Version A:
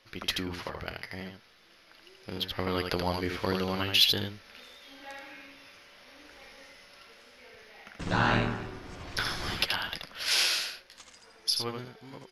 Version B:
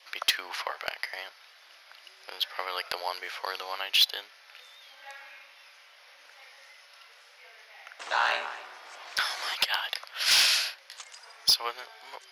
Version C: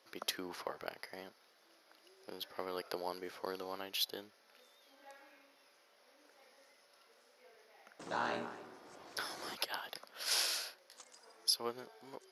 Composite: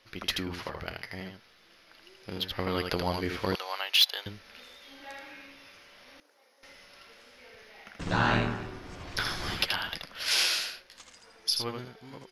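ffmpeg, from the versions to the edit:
-filter_complex "[0:a]asplit=3[a][b][c];[a]atrim=end=3.552[d];[1:a]atrim=start=3.548:end=4.262[e];[b]atrim=start=4.258:end=6.202[f];[2:a]atrim=start=6.198:end=6.632[g];[c]atrim=start=6.628[h];[d][e]acrossfade=d=0.004:c1=hsin:c2=hsin[i];[i][f]acrossfade=d=0.004:c1=hsin:c2=hsin[j];[j][g]acrossfade=d=0.004:c1=hsin:c2=hsin[k];[k][h]acrossfade=d=0.004:c1=hsin:c2=hsin"

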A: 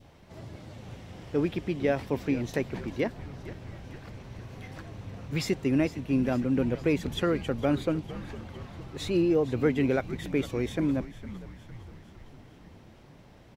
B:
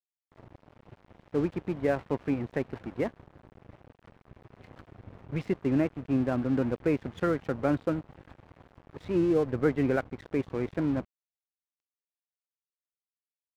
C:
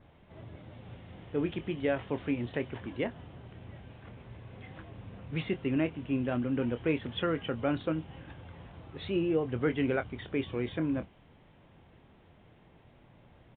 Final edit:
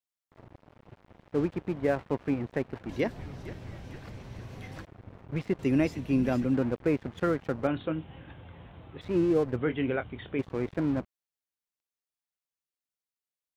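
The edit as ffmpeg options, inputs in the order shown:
-filter_complex "[0:a]asplit=2[a][b];[2:a]asplit=2[c][d];[1:a]asplit=5[e][f][g][h][i];[e]atrim=end=2.892[j];[a]atrim=start=2.888:end=4.852[k];[f]atrim=start=4.848:end=5.592[l];[b]atrim=start=5.588:end=6.542[m];[g]atrim=start=6.538:end=7.672[n];[c]atrim=start=7.668:end=9.012[o];[h]atrim=start=9.008:end=9.572[p];[d]atrim=start=9.568:end=10.392[q];[i]atrim=start=10.388[r];[j][k]acrossfade=d=0.004:c1=hsin:c2=hsin[s];[s][l]acrossfade=d=0.004:c1=hsin:c2=hsin[t];[t][m]acrossfade=d=0.004:c1=hsin:c2=hsin[u];[u][n]acrossfade=d=0.004:c1=hsin:c2=hsin[v];[v][o]acrossfade=d=0.004:c1=hsin:c2=hsin[w];[w][p]acrossfade=d=0.004:c1=hsin:c2=hsin[x];[x][q]acrossfade=d=0.004:c1=hsin:c2=hsin[y];[y][r]acrossfade=d=0.004:c1=hsin:c2=hsin"

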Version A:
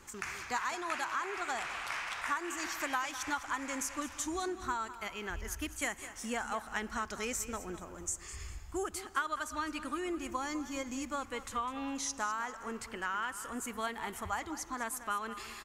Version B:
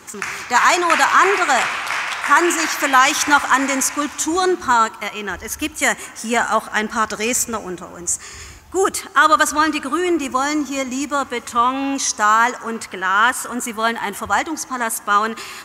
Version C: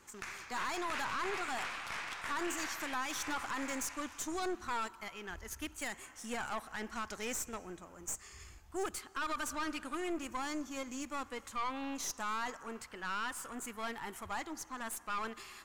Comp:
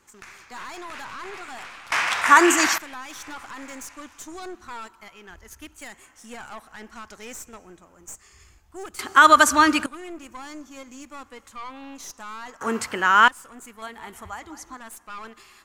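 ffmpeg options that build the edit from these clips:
-filter_complex "[1:a]asplit=3[a][b][c];[2:a]asplit=5[d][e][f][g][h];[d]atrim=end=1.922[i];[a]atrim=start=1.918:end=2.782[j];[e]atrim=start=2.778:end=8.992[k];[b]atrim=start=8.988:end=9.862[l];[f]atrim=start=9.858:end=12.612[m];[c]atrim=start=12.608:end=13.282[n];[g]atrim=start=13.278:end=13.822[o];[0:a]atrim=start=13.818:end=14.772[p];[h]atrim=start=14.768[q];[i][j]acrossfade=d=0.004:c1=hsin:c2=hsin[r];[r][k]acrossfade=d=0.004:c1=hsin:c2=hsin[s];[s][l]acrossfade=d=0.004:c1=hsin:c2=hsin[t];[t][m]acrossfade=d=0.004:c1=hsin:c2=hsin[u];[u][n]acrossfade=d=0.004:c1=hsin:c2=hsin[v];[v][o]acrossfade=d=0.004:c1=hsin:c2=hsin[w];[w][p]acrossfade=d=0.004:c1=hsin:c2=hsin[x];[x][q]acrossfade=d=0.004:c1=hsin:c2=hsin"

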